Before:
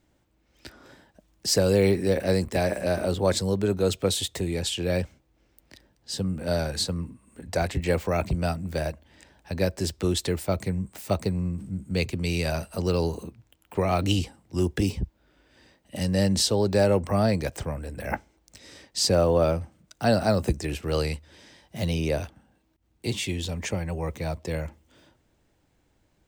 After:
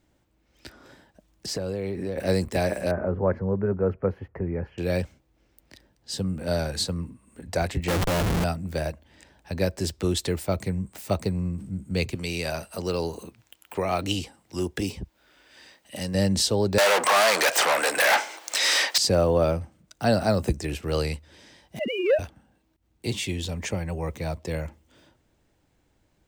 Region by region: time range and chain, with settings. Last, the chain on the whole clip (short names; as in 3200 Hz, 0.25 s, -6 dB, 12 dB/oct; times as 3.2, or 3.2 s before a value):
1.46–2.18 high shelf 4100 Hz -11.5 dB + compressor, threshold -26 dBFS
2.91–4.78 inverse Chebyshev low-pass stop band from 3400 Hz + bell 720 Hz -3 dB 0.3 oct + notch 310 Hz, Q 6.3
7.88–8.44 ripple EQ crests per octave 1.2, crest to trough 10 dB + Schmitt trigger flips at -33.5 dBFS
12.15–16.15 low shelf 210 Hz -9 dB + mismatched tape noise reduction encoder only
16.78–18.98 overdrive pedal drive 39 dB, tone 6600 Hz, clips at -10 dBFS + HPF 680 Hz
21.79–22.19 sine-wave speech + sample leveller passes 1
whole clip: dry